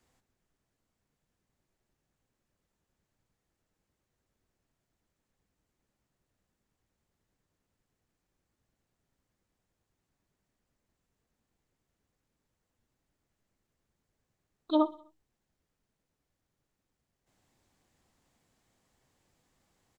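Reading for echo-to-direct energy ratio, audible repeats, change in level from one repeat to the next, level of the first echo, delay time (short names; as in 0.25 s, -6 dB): -19.5 dB, 3, -5.0 dB, -21.0 dB, 63 ms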